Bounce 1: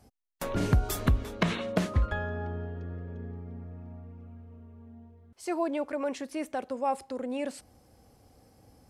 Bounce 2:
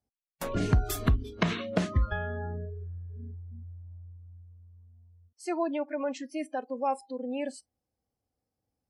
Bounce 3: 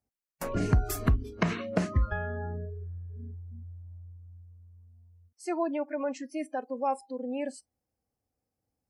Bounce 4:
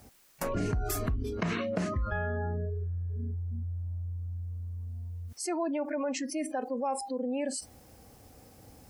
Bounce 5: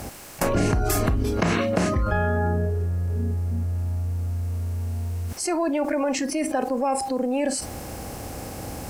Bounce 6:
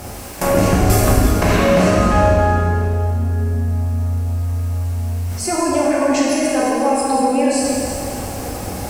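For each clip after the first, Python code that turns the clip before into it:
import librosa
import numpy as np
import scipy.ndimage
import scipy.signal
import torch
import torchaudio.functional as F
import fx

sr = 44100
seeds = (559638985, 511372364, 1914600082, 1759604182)

y1 = fx.noise_reduce_blind(x, sr, reduce_db=27)
y2 = fx.peak_eq(y1, sr, hz=3500.0, db=-10.5, octaves=0.44)
y3 = fx.env_flatten(y2, sr, amount_pct=70)
y3 = F.gain(torch.from_numpy(y3), -9.0).numpy()
y4 = fx.bin_compress(y3, sr, power=0.6)
y4 = F.gain(torch.from_numpy(y4), 6.0).numpy()
y5 = fx.rev_plate(y4, sr, seeds[0], rt60_s=2.7, hf_ratio=0.95, predelay_ms=0, drr_db=-6.0)
y5 = F.gain(torch.from_numpy(y5), 1.5).numpy()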